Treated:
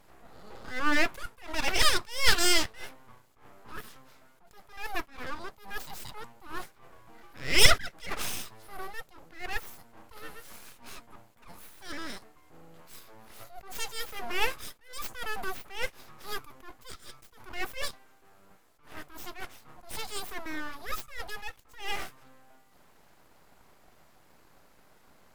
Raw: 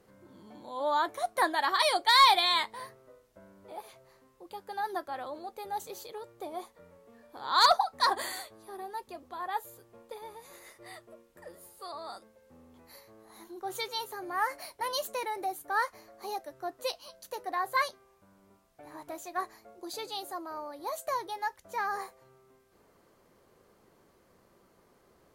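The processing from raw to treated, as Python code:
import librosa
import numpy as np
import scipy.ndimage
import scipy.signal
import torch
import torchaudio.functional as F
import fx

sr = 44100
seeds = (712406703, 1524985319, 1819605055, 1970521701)

y = fx.ripple_eq(x, sr, per_octave=1.4, db=7)
y = np.abs(y)
y = fx.attack_slew(y, sr, db_per_s=140.0)
y = y * librosa.db_to_amplitude(5.5)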